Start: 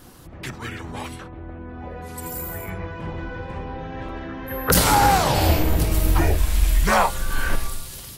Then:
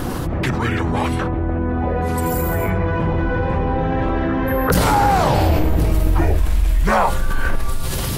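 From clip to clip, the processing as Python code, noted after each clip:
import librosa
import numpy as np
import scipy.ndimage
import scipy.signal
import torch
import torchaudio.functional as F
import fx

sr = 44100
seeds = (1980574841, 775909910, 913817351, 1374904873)

y = fx.high_shelf(x, sr, hz=2400.0, db=-11.5)
y = fx.env_flatten(y, sr, amount_pct=70)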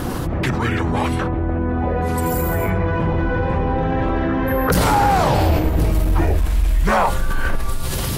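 y = fx.clip_asym(x, sr, top_db=-10.0, bottom_db=-8.0)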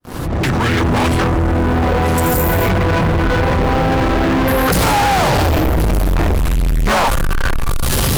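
y = fx.fade_in_head(x, sr, length_s=0.89)
y = fx.leveller(y, sr, passes=5)
y = F.gain(torch.from_numpy(y), -4.0).numpy()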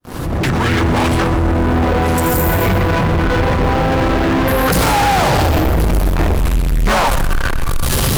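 y = fx.echo_feedback(x, sr, ms=124, feedback_pct=43, wet_db=-12.5)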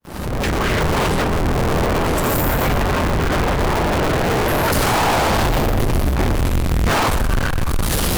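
y = fx.cycle_switch(x, sr, every=2, mode='inverted')
y = F.gain(torch.from_numpy(y), -3.5).numpy()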